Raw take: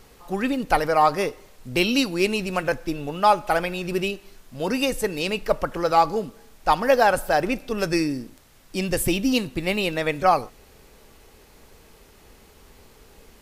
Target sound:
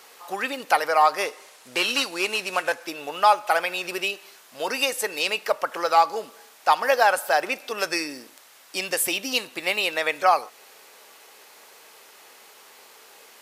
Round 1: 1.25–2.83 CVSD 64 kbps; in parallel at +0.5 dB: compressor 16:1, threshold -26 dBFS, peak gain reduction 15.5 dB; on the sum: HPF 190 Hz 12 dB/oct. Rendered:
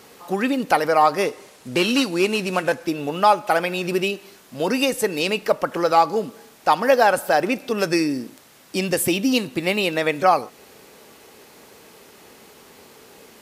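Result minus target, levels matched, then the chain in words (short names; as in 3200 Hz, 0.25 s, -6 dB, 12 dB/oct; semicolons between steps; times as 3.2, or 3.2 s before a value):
250 Hz band +11.5 dB
1.25–2.83 CVSD 64 kbps; in parallel at +0.5 dB: compressor 16:1, threshold -26 dBFS, peak gain reduction 15.5 dB; on the sum: HPF 690 Hz 12 dB/oct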